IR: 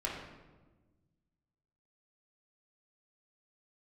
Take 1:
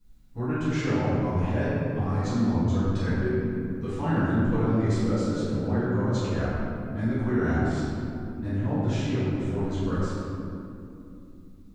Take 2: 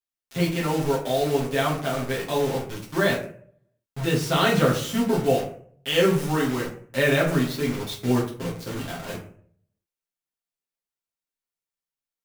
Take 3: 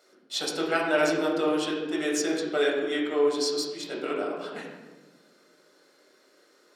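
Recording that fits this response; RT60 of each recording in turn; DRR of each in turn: 3; 2.8 s, 0.55 s, 1.3 s; -14.5 dB, -5.0 dB, -4.0 dB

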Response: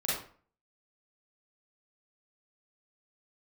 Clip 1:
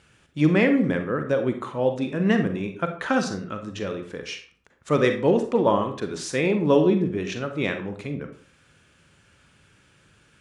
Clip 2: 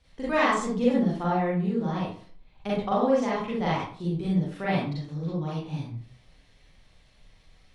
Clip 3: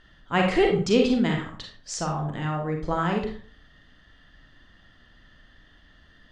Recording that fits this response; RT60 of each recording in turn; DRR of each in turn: 2; 0.45 s, 0.45 s, 0.45 s; 6.0 dB, -8.0 dB, 1.0 dB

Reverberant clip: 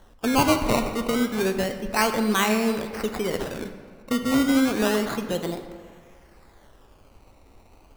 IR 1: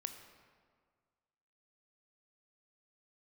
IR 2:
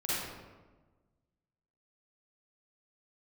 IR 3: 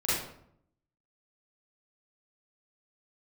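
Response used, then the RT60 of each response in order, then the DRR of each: 1; 1.8 s, 1.3 s, 0.70 s; 7.0 dB, -10.0 dB, -11.0 dB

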